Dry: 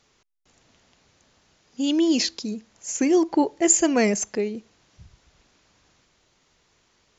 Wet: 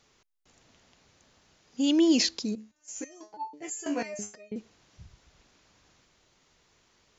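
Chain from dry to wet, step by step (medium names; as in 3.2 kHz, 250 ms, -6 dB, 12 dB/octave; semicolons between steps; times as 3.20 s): 2.55–4.56 s: resonator arpeggio 6.1 Hz 72–890 Hz; trim -1.5 dB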